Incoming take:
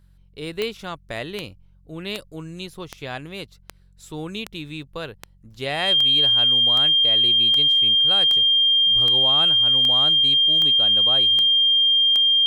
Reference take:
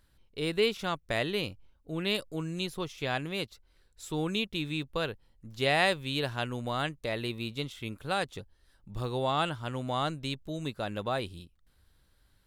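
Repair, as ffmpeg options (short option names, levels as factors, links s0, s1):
-af "adeclick=t=4,bandreject=f=45.8:t=h:w=4,bandreject=f=91.6:t=h:w=4,bandreject=f=137.4:t=h:w=4,bandreject=f=183.2:t=h:w=4,bandreject=f=3200:w=30"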